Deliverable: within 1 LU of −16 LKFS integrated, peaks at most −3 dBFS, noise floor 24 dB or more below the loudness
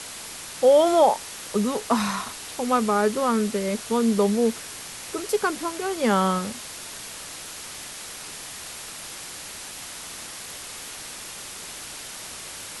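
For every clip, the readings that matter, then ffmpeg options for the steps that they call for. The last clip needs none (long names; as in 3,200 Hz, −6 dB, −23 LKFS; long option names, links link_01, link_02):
background noise floor −38 dBFS; target noise floor −50 dBFS; integrated loudness −26.0 LKFS; sample peak −7.5 dBFS; target loudness −16.0 LKFS
→ -af "afftdn=noise_reduction=12:noise_floor=-38"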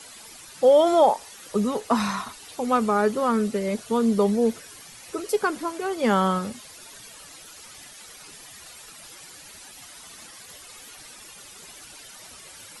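background noise floor −45 dBFS; target noise floor −47 dBFS
→ -af "afftdn=noise_reduction=6:noise_floor=-45"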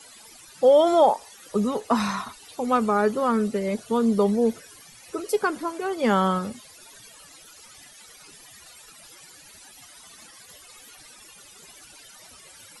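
background noise floor −49 dBFS; integrated loudness −23.0 LKFS; sample peak −7.5 dBFS; target loudness −16.0 LKFS
→ -af "volume=7dB,alimiter=limit=-3dB:level=0:latency=1"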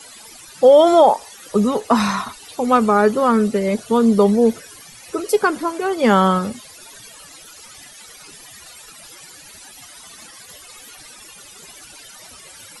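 integrated loudness −16.5 LKFS; sample peak −3.0 dBFS; background noise floor −42 dBFS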